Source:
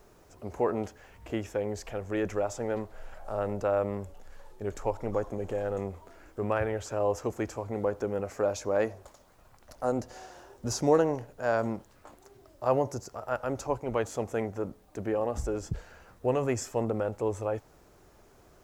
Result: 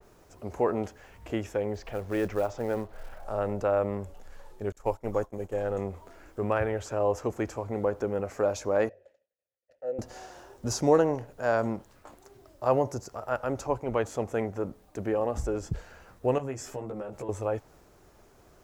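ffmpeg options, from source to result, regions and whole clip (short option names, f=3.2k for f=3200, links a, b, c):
-filter_complex "[0:a]asettb=1/sr,asplit=3[a][b][c];[a]atrim=end=1.744[d];[b]atrim=start=1.74:end=3.24,asetpts=PTS-STARTPTS,afade=t=in:d=0.004:c=qsin,afade=t=out:st=1.496:d=0.004:c=qsin,lowpass=f=5.7k:w=0.5412,lowpass=f=5.7k:w=1.3066,highshelf=f=4.1k:g=-4.5,acrusher=bits=6:mode=log:mix=0:aa=0.000001[e];[c]atrim=start=3.236[f];[d][e]acrossfade=d=0.004:c1=hsin:c2=qsin[g];[g][f]acrossfade=d=0.004:c1=qsin:c2=hsin,asettb=1/sr,asplit=3[h][i][j];[h]atrim=end=4.724[k];[i]atrim=start=4.72:end=5.54,asetpts=PTS-STARTPTS,afade=t=in:d=0.004:c=qsin,afade=t=out:st=0.816:d=0.004:c=qsin,agate=range=-33dB:threshold=-31dB:ratio=3:release=100:detection=peak,highshelf=f=7.8k:g=10.5[l];[j]atrim=start=5.536[m];[k][l]acrossfade=d=0.004:c1=hsin:c2=qsin[n];[n][m]acrossfade=d=0.004:c1=qsin:c2=hsin,asettb=1/sr,asplit=3[o][p][q];[o]atrim=end=8.894[r];[p]atrim=start=8.89:end=9.99,asetpts=PTS-STARTPTS,afade=t=in:d=0.004:c=qsin,afade=t=out:st=1.096:d=0.004:c=qsin,asplit=3[s][t][u];[s]bandpass=f=530:t=q:w=8,volume=0dB[v];[t]bandpass=f=1.84k:t=q:w=8,volume=-6dB[w];[u]bandpass=f=2.48k:t=q:w=8,volume=-9dB[x];[v][w][x]amix=inputs=3:normalize=0,equalizer=f=89:t=o:w=1.6:g=9.5[y];[q]atrim=start=9.986[z];[r][y]acrossfade=d=0.004:c1=hsin:c2=qsin[aa];[aa][z]acrossfade=d=0.004:c1=qsin:c2=hsin,asettb=1/sr,asplit=3[ab][ac][ad];[ab]atrim=end=16.384[ae];[ac]atrim=start=16.38:end=17.29,asetpts=PTS-STARTPTS,afade=t=in:d=0.004:c=qsin,afade=t=out:st=0.906:d=0.004:c=qsin,acompressor=threshold=-39dB:ratio=3:attack=3.2:release=140:knee=1:detection=peak,asplit=2[af][ag];[ag]adelay=15,volume=-2.5dB[ah];[af][ah]amix=inputs=2:normalize=0,atrim=end_sample=40131[ai];[ad]atrim=start=17.286[aj];[ae][ai]acrossfade=d=0.004:c1=hsin:c2=qsin[ak];[ak][aj]acrossfade=d=0.004:c1=qsin:c2=hsin,agate=range=-33dB:threshold=-56dB:ratio=3:detection=peak,adynamicequalizer=threshold=0.00398:dfrequency=3300:dqfactor=0.7:tfrequency=3300:tqfactor=0.7:attack=5:release=100:ratio=0.375:range=2:mode=cutabove:tftype=highshelf,volume=1.5dB"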